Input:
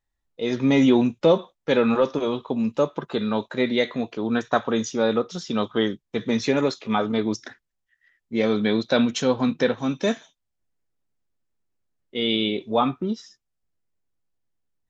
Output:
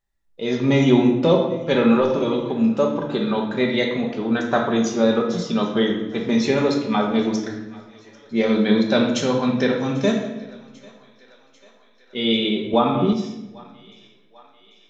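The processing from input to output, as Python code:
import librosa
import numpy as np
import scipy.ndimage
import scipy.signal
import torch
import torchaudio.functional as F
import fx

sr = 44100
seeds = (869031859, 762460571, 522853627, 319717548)

y = fx.echo_thinned(x, sr, ms=793, feedback_pct=67, hz=480.0, wet_db=-23.0)
y = fx.room_shoebox(y, sr, seeds[0], volume_m3=480.0, walls='mixed', distance_m=1.2)
y = fx.band_squash(y, sr, depth_pct=100, at=(12.73, 13.13))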